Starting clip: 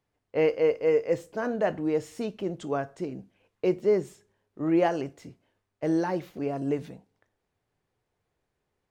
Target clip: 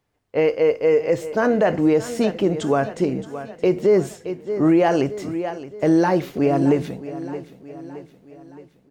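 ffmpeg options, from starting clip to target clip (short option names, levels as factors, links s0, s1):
-af "dynaudnorm=f=440:g=5:m=2.11,aecho=1:1:620|1240|1860|2480|3100:0.168|0.0839|0.042|0.021|0.0105,alimiter=limit=0.178:level=0:latency=1:release=84,volume=2"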